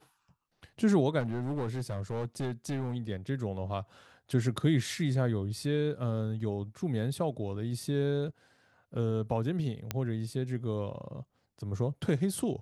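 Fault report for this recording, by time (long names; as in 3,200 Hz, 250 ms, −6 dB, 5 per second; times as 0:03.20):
0:01.19–0:02.95: clipping −29 dBFS
0:09.91: click −15 dBFS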